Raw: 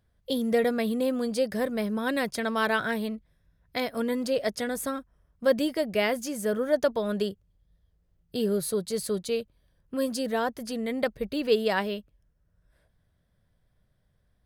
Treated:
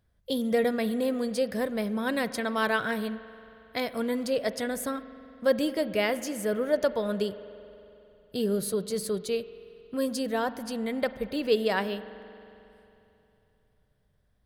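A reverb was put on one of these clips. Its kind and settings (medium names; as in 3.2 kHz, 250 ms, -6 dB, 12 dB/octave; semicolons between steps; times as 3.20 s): spring tank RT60 3 s, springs 45 ms, chirp 30 ms, DRR 13.5 dB; trim -1 dB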